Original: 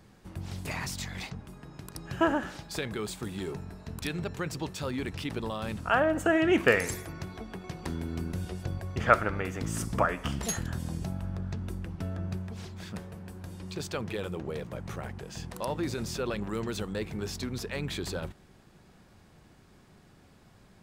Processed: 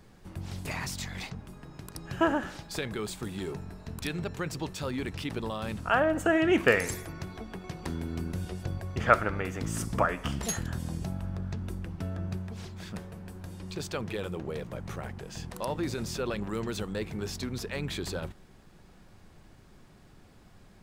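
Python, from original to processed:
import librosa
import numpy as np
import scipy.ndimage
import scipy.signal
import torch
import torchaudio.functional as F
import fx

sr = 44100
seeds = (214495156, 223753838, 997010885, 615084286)

y = fx.dmg_noise_colour(x, sr, seeds[0], colour='brown', level_db=-57.0)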